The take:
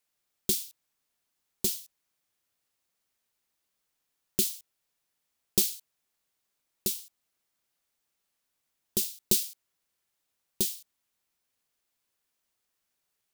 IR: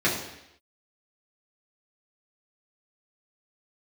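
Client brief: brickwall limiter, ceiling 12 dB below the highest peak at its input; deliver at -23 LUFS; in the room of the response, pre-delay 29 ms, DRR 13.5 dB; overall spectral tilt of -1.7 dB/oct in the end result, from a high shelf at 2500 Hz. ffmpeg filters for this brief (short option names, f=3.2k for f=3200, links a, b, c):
-filter_complex "[0:a]highshelf=f=2.5k:g=-7.5,alimiter=limit=-22.5dB:level=0:latency=1,asplit=2[a][b];[1:a]atrim=start_sample=2205,adelay=29[c];[b][c]afir=irnorm=-1:irlink=0,volume=-28.5dB[d];[a][d]amix=inputs=2:normalize=0,volume=17dB"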